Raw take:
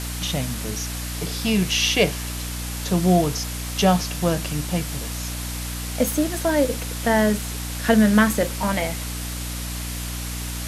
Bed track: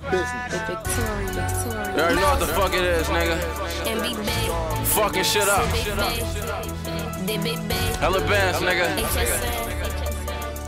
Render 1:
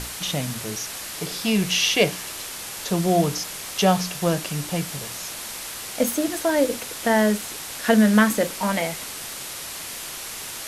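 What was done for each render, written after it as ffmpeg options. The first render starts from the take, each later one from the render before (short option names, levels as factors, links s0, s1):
-af "bandreject=f=60:t=h:w=6,bandreject=f=120:t=h:w=6,bandreject=f=180:t=h:w=6,bandreject=f=240:t=h:w=6,bandreject=f=300:t=h:w=6"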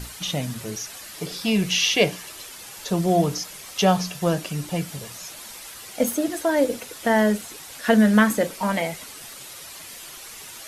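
-af "afftdn=nr=9:nf=-35"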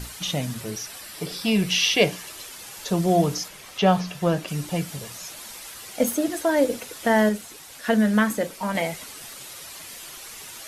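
-filter_complex "[0:a]asettb=1/sr,asplit=3[s0][s1][s2];[s0]atrim=end=0.614[s3];[s1]atrim=start=0.61:end=2.02,asetpts=PTS-STARTPTS,afade=t=in:d=0.004:c=qsin,afade=t=out:st=1.406:d=0.004:c=qsin,bandreject=f=6600:w=8.9[s4];[s2]atrim=start=2.016[s5];[s3][s4]acrossfade=d=0.004:c1=hsin:c2=qsin[s6];[s6][s5]acrossfade=d=0.004:c1=qsin:c2=hsin,asettb=1/sr,asplit=3[s7][s8][s9];[s7]atrim=end=3.484[s10];[s8]atrim=start=3.48:end=4.48,asetpts=PTS-STARTPTS,afade=t=in:d=0.004:c=qsin,afade=t=out:st=0.996:d=0.004:c=qsin,acrossover=split=3800[s11][s12];[s12]acompressor=threshold=0.00631:ratio=4:attack=1:release=60[s13];[s11][s13]amix=inputs=2:normalize=0[s14];[s9]atrim=start=4.476[s15];[s10][s14]acrossfade=d=0.004:c1=hsin:c2=qsin[s16];[s16][s15]acrossfade=d=0.004:c1=qsin:c2=hsin,asplit=3[s17][s18][s19];[s17]atrim=end=7.292[s20];[s18]atrim=start=7.288:end=8.752,asetpts=PTS-STARTPTS,volume=0.668[s21];[s19]atrim=start=8.748[s22];[s20][s21]acrossfade=d=0.004:c1=hsin:c2=hsin[s23];[s23][s22]acrossfade=d=0.004:c1=hsin:c2=hsin"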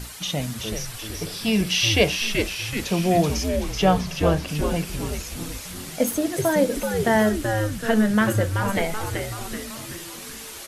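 -filter_complex "[0:a]asplit=8[s0][s1][s2][s3][s4][s5][s6][s7];[s1]adelay=380,afreqshift=-110,volume=0.562[s8];[s2]adelay=760,afreqshift=-220,volume=0.316[s9];[s3]adelay=1140,afreqshift=-330,volume=0.176[s10];[s4]adelay=1520,afreqshift=-440,volume=0.0989[s11];[s5]adelay=1900,afreqshift=-550,volume=0.0556[s12];[s6]adelay=2280,afreqshift=-660,volume=0.0309[s13];[s7]adelay=2660,afreqshift=-770,volume=0.0174[s14];[s0][s8][s9][s10][s11][s12][s13][s14]amix=inputs=8:normalize=0"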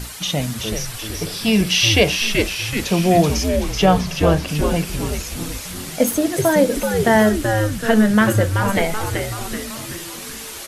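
-af "volume=1.78,alimiter=limit=0.708:level=0:latency=1"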